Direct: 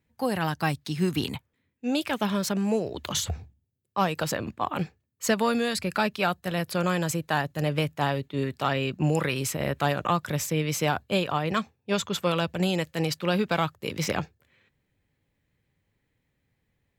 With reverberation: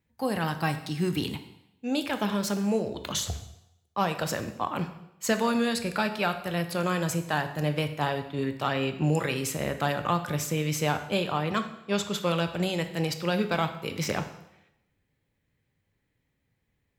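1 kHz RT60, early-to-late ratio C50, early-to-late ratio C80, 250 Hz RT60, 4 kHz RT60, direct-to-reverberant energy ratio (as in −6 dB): 0.85 s, 11.0 dB, 13.0 dB, 0.85 s, 0.80 s, 8.0 dB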